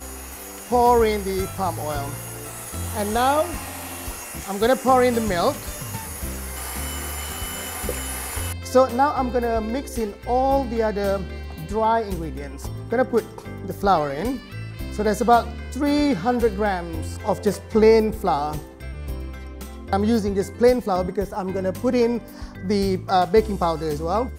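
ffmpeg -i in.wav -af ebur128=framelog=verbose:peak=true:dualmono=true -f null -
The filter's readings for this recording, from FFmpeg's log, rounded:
Integrated loudness:
  I:         -19.5 LUFS
  Threshold: -30.0 LUFS
Loudness range:
  LRA:         3.7 LU
  Threshold: -40.1 LUFS
  LRA low:   -22.1 LUFS
  LRA high:  -18.4 LUFS
True peak:
  Peak:       -4.8 dBFS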